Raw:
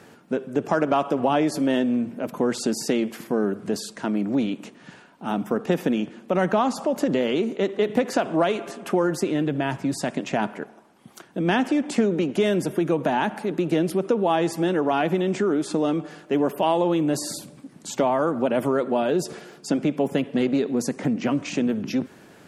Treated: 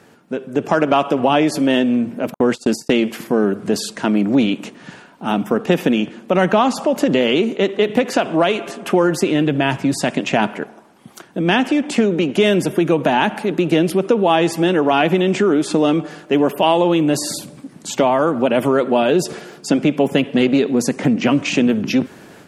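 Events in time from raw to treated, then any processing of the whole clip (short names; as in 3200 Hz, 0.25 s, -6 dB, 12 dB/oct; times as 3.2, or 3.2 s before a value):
2.34–2.97 gate -30 dBFS, range -58 dB
whole clip: dynamic EQ 2800 Hz, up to +6 dB, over -46 dBFS, Q 1.8; AGC gain up to 8.5 dB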